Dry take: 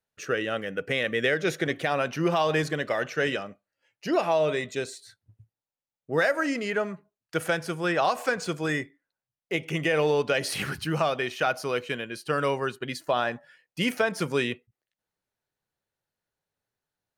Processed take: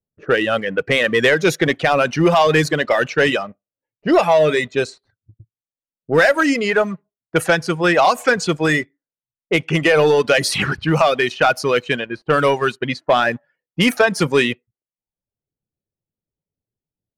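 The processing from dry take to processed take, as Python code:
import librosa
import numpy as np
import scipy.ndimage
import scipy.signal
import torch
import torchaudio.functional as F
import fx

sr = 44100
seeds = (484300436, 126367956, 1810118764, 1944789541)

y = fx.dereverb_blind(x, sr, rt60_s=0.68)
y = fx.leveller(y, sr, passes=1)
y = fx.env_lowpass(y, sr, base_hz=320.0, full_db=-22.0)
y = y * librosa.db_to_amplitude(8.5)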